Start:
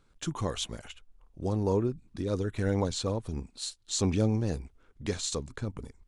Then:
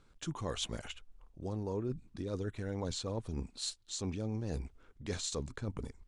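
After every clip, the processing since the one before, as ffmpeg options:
-af "lowpass=9.8k,areverse,acompressor=threshold=-35dB:ratio=6,areverse,volume=1dB"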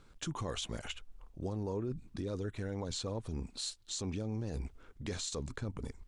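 -af "alimiter=level_in=9dB:limit=-24dB:level=0:latency=1:release=123,volume=-9dB,volume=4.5dB"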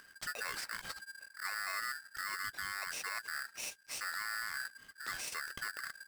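-af "acompressor=mode=upward:threshold=-53dB:ratio=2.5,aeval=exprs='val(0)*sgn(sin(2*PI*1600*n/s))':c=same,volume=-2.5dB"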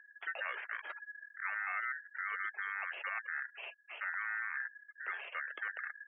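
-af "highpass=f=290:t=q:w=0.5412,highpass=f=290:t=q:w=1.307,lowpass=f=2.9k:t=q:w=0.5176,lowpass=f=2.9k:t=q:w=0.7071,lowpass=f=2.9k:t=q:w=1.932,afreqshift=79,afftfilt=real='re*gte(hypot(re,im),0.00282)':imag='im*gte(hypot(re,im),0.00282)':win_size=1024:overlap=0.75,volume=2dB"

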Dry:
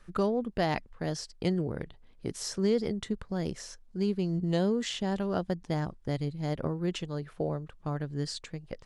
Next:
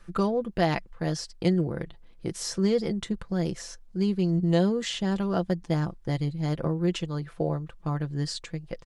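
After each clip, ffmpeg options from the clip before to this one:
-af "aecho=1:1:5.9:0.47,volume=2.5dB"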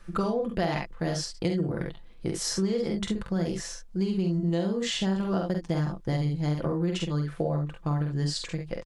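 -af "aecho=1:1:47|68:0.596|0.376,acompressor=threshold=-25dB:ratio=6,volume=1.5dB"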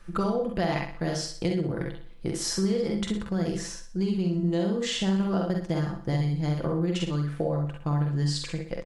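-af "aecho=1:1:62|124|186|248|310:0.355|0.145|0.0596|0.0245|0.01"

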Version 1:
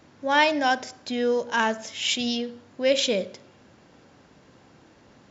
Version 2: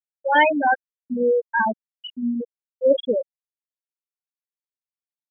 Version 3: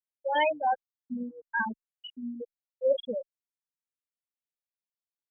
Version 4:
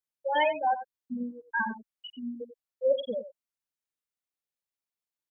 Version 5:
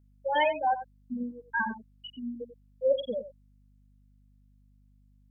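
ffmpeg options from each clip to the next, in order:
-af "afftfilt=real='re*gte(hypot(re,im),0.355)':imag='im*gte(hypot(re,im),0.355)':win_size=1024:overlap=0.75,volume=5dB"
-filter_complex "[0:a]asplit=2[a][b];[b]afreqshift=0.46[c];[a][c]amix=inputs=2:normalize=1,volume=-6.5dB"
-af "aecho=1:1:91:0.237"
-af "aeval=exprs='val(0)+0.001*(sin(2*PI*50*n/s)+sin(2*PI*2*50*n/s)/2+sin(2*PI*3*50*n/s)/3+sin(2*PI*4*50*n/s)/4+sin(2*PI*5*50*n/s)/5)':c=same"

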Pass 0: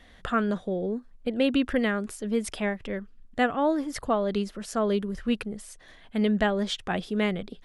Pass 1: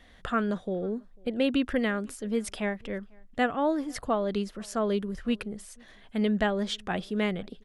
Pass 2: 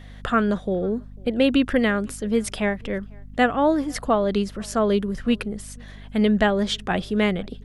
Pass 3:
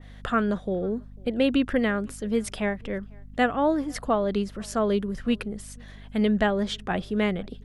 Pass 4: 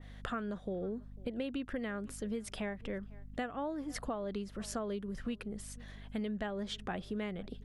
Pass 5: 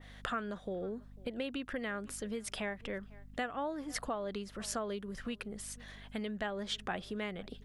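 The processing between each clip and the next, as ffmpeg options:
-filter_complex "[0:a]asplit=2[a][b];[b]adelay=495.6,volume=-28dB,highshelf=f=4k:g=-11.2[c];[a][c]amix=inputs=2:normalize=0,volume=-2dB"
-af "aeval=exprs='val(0)+0.00447*(sin(2*PI*50*n/s)+sin(2*PI*2*50*n/s)/2+sin(2*PI*3*50*n/s)/3+sin(2*PI*4*50*n/s)/4+sin(2*PI*5*50*n/s)/5)':c=same,volume=7dB"
-af "adynamicequalizer=threshold=0.0141:dfrequency=2400:dqfactor=0.7:tfrequency=2400:tqfactor=0.7:attack=5:release=100:ratio=0.375:range=2.5:mode=cutabove:tftype=highshelf,volume=-3.5dB"
-af "acompressor=threshold=-30dB:ratio=6,volume=-5dB"
-af "lowshelf=f=500:g=-8.5,volume=4.5dB"

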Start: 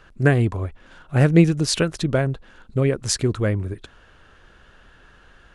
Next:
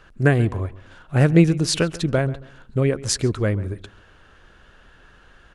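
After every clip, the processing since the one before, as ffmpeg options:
-filter_complex "[0:a]asplit=2[a][b];[b]adelay=136,lowpass=f=2.9k:p=1,volume=-18dB,asplit=2[c][d];[d]adelay=136,lowpass=f=2.9k:p=1,volume=0.29,asplit=2[e][f];[f]adelay=136,lowpass=f=2.9k:p=1,volume=0.29[g];[a][c][e][g]amix=inputs=4:normalize=0"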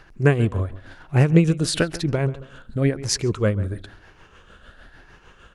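-filter_complex "[0:a]afftfilt=real='re*pow(10,6/40*sin(2*PI*(0.76*log(max(b,1)*sr/1024/100)/log(2)-(1)*(pts-256)/sr)))':imag='im*pow(10,6/40*sin(2*PI*(0.76*log(max(b,1)*sr/1024/100)/log(2)-(1)*(pts-256)/sr)))':win_size=1024:overlap=0.75,asplit=2[a][b];[b]acompressor=threshold=-24dB:ratio=12,volume=-1.5dB[c];[a][c]amix=inputs=2:normalize=0,tremolo=f=6.6:d=0.53,volume=-1dB"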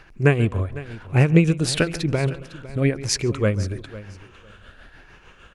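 -af "equalizer=f=2.4k:t=o:w=0.38:g=6.5,aecho=1:1:504|1008:0.141|0.0254"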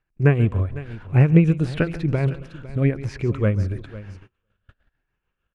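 -filter_complex "[0:a]acrossover=split=2700[a][b];[b]acompressor=threshold=-40dB:ratio=4:attack=1:release=60[c];[a][c]amix=inputs=2:normalize=0,agate=range=-29dB:threshold=-41dB:ratio=16:detection=peak,bass=f=250:g=5,treble=f=4k:g=-7,volume=-2.5dB"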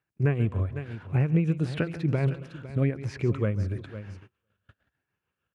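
-af "highpass=f=77:w=0.5412,highpass=f=77:w=1.3066,alimiter=limit=-12dB:level=0:latency=1:release=336,volume=-2.5dB"

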